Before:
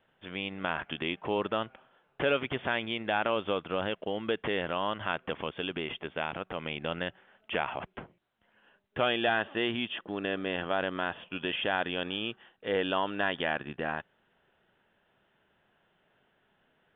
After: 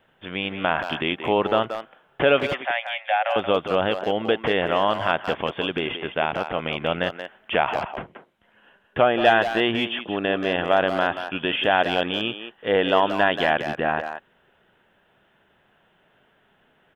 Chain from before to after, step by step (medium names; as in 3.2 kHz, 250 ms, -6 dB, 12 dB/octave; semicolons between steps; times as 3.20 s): 2.53–3.36 s: rippled Chebyshev high-pass 530 Hz, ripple 9 dB; dynamic bell 700 Hz, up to +5 dB, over -44 dBFS, Q 2.3; speakerphone echo 180 ms, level -8 dB; 7.79–9.25 s: low-pass that closes with the level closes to 1.7 kHz, closed at -21.5 dBFS; trim +8 dB